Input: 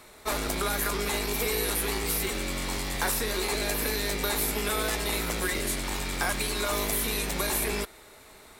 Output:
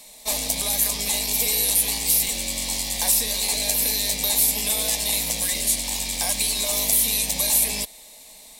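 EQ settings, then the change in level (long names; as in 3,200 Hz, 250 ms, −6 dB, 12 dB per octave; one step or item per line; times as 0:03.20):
high-shelf EQ 2,200 Hz +8 dB
parametric band 7,700 Hz +4.5 dB 2.4 octaves
phaser with its sweep stopped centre 370 Hz, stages 6
0.0 dB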